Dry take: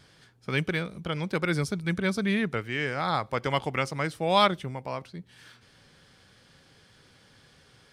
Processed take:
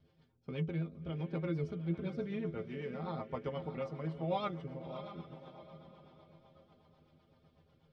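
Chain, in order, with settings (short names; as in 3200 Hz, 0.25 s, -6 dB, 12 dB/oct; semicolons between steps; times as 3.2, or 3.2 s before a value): bell 1700 Hz -9.5 dB 0.75 oct; metallic resonator 79 Hz, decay 0.21 s, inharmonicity 0.008; on a send: diffused feedback echo 0.628 s, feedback 42%, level -10 dB; on the sum: rotary speaker horn 8 Hz; tape spacing loss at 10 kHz 34 dB; gain +1 dB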